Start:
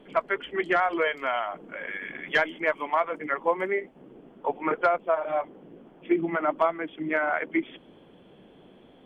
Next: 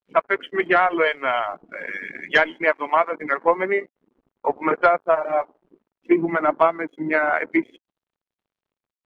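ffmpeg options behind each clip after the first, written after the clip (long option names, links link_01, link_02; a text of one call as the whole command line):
ffmpeg -i in.wav -af "aeval=exprs='sgn(val(0))*max(abs(val(0))-0.00473,0)':channel_layout=same,aeval=exprs='0.266*(cos(1*acos(clip(val(0)/0.266,-1,1)))-cos(1*PI/2))+0.0133*(cos(3*acos(clip(val(0)/0.266,-1,1)))-cos(3*PI/2))':channel_layout=same,afftdn=noise_reduction=19:noise_floor=-47,volume=7.5dB" out.wav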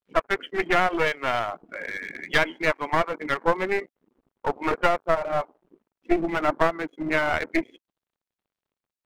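ffmpeg -i in.wav -af "aeval=exprs='clip(val(0),-1,0.0501)':channel_layout=same,volume=-1.5dB" out.wav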